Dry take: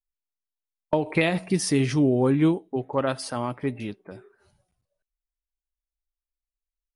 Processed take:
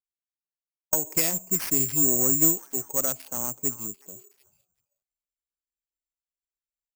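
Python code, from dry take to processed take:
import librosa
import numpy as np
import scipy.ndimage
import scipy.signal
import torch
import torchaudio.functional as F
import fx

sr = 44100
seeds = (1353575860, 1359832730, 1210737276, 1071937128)

p1 = fx.wiener(x, sr, points=25)
p2 = fx.highpass(p1, sr, hz=87.0, slope=6)
p3 = fx.rider(p2, sr, range_db=3, speed_s=2.0)
p4 = p2 + F.gain(torch.from_numpy(p3), -1.0).numpy()
p5 = fx.cheby_harmonics(p4, sr, harmonics=(2, 7), levels_db=(-11, -28), full_scale_db=-4.5)
p6 = p5 + fx.echo_stepped(p5, sr, ms=371, hz=1300.0, octaves=1.4, feedback_pct=70, wet_db=-11.5, dry=0)
p7 = (np.kron(p6[::6], np.eye(6)[0]) * 6)[:len(p6)]
y = F.gain(torch.from_numpy(p7), -12.5).numpy()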